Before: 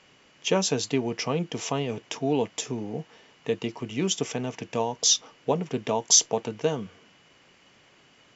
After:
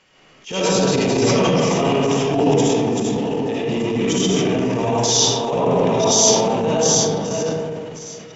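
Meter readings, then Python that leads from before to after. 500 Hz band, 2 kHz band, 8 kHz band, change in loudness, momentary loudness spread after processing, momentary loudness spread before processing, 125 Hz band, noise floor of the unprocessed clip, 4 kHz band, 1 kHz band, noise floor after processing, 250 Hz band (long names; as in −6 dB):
+11.5 dB, +9.5 dB, can't be measured, +9.0 dB, 8 LU, 13 LU, +11.5 dB, −59 dBFS, +7.5 dB, +11.5 dB, −49 dBFS, +12.0 dB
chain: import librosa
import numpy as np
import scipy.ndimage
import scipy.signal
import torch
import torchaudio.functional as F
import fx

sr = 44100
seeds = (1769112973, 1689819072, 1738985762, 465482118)

p1 = fx.reverse_delay(x, sr, ms=465, wet_db=-4.0)
p2 = p1 + fx.echo_wet_highpass(p1, sr, ms=1138, feedback_pct=51, hz=3400.0, wet_db=-18.0, dry=0)
p3 = fx.rev_freeverb(p2, sr, rt60_s=2.4, hf_ratio=0.3, predelay_ms=35, drr_db=-9.0)
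y = fx.transient(p3, sr, attack_db=-11, sustain_db=5)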